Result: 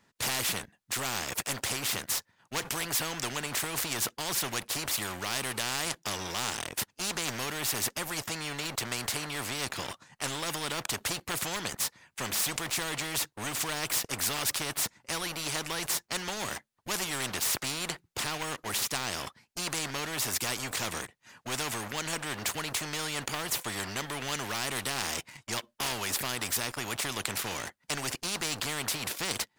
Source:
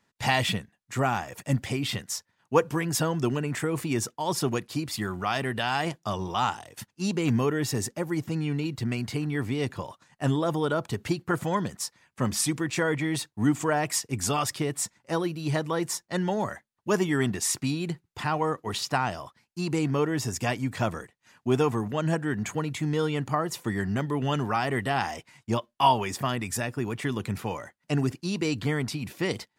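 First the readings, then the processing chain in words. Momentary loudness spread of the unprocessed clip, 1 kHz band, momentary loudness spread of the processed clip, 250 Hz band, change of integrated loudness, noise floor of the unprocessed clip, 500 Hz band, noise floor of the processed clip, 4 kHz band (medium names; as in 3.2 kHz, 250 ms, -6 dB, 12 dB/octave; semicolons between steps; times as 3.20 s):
7 LU, -7.5 dB, 6 LU, -13.0 dB, -3.5 dB, -76 dBFS, -10.5 dB, -72 dBFS, +3.0 dB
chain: waveshaping leveller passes 2; spectrum-flattening compressor 4:1; trim -1.5 dB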